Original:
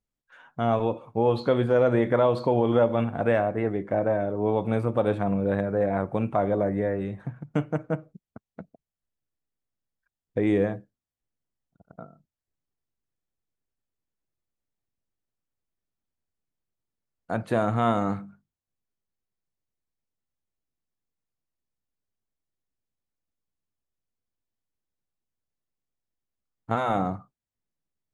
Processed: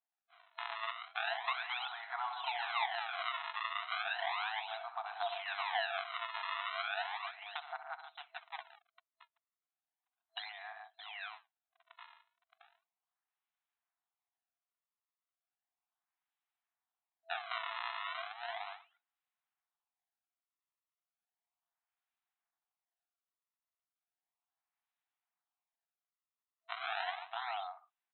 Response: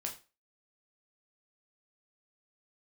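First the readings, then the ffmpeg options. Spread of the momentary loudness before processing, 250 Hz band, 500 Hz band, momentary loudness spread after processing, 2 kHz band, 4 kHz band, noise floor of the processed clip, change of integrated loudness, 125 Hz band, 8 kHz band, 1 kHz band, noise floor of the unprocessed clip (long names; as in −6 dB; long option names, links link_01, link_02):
11 LU, below −40 dB, −24.0 dB, 13 LU, −1.0 dB, +5.5 dB, below −85 dBFS, −14.0 dB, below −40 dB, can't be measured, −8.0 dB, below −85 dBFS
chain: -af "aecho=1:1:66|114|142|620:0.266|0.211|0.2|0.282,acompressor=threshold=-25dB:ratio=6,acrusher=samples=32:mix=1:aa=0.000001:lfo=1:lforange=51.2:lforate=0.35,afftfilt=real='re*between(b*sr/4096,660,4100)':imag='im*between(b*sr/4096,660,4100)':win_size=4096:overlap=0.75,volume=-1dB"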